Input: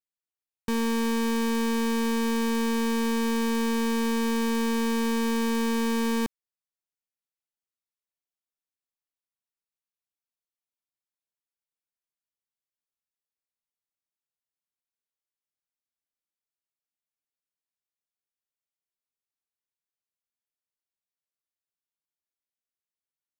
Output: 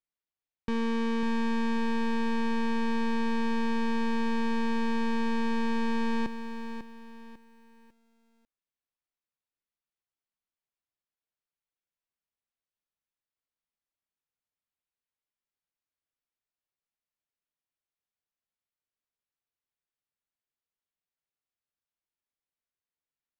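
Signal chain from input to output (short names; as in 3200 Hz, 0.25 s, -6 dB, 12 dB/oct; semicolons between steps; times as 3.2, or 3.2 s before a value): LPF 3600 Hz 12 dB/oct; low shelf 80 Hz +5.5 dB; limiter -25 dBFS, peak gain reduction 3.5 dB; lo-fi delay 0.547 s, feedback 35%, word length 10-bit, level -9 dB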